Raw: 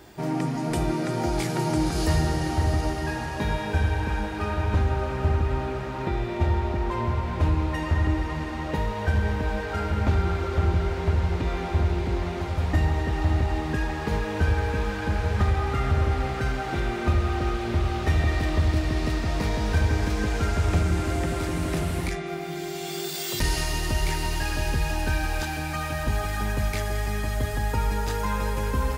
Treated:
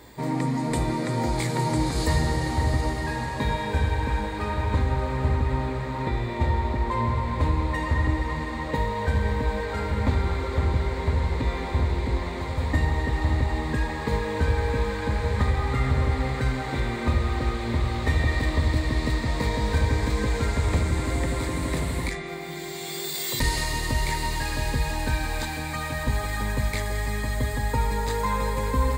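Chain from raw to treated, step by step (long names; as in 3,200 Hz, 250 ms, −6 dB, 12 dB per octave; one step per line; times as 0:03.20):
EQ curve with evenly spaced ripples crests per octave 1, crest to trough 9 dB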